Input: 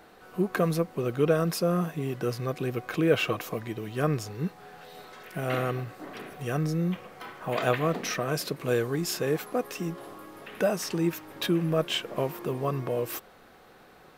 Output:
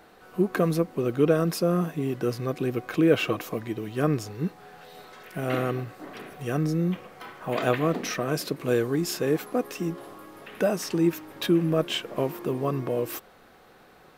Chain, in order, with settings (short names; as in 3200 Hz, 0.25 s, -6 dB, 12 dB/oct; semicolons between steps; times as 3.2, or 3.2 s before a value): dynamic EQ 290 Hz, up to +6 dB, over -40 dBFS, Q 1.5